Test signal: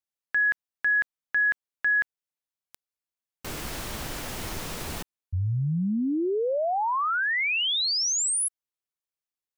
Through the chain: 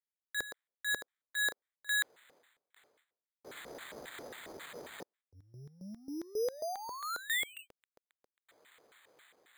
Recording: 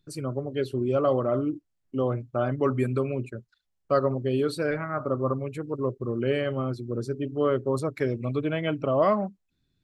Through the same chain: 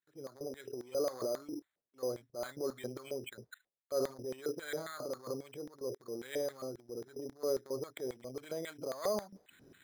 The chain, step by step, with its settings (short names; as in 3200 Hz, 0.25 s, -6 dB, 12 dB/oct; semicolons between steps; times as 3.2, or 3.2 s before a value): transient shaper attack -8 dB, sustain +10 dB; reverse; upward compressor 4:1, threshold -26 dBFS; reverse; gate -53 dBFS, range -10 dB; LFO band-pass square 3.7 Hz 490–1900 Hz; polynomial smoothing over 25 samples; careless resampling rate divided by 8×, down filtered, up hold; gain -5.5 dB